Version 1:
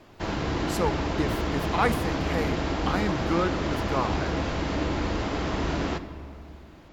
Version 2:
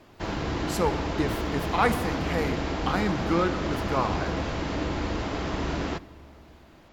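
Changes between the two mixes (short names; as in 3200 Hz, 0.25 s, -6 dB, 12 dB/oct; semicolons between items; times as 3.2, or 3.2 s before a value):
speech: send +6.5 dB; background: send -9.0 dB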